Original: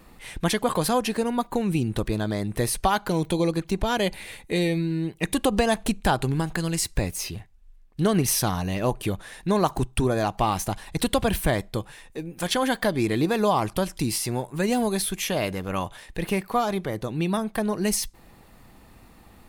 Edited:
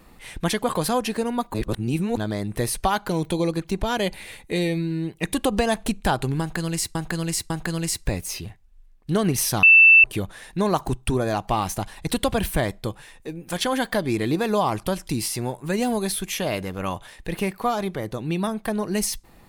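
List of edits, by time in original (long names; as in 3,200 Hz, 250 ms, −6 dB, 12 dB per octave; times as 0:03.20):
0:01.54–0:02.17: reverse
0:06.40–0:06.95: repeat, 3 plays
0:08.53–0:08.94: beep over 2,660 Hz −8 dBFS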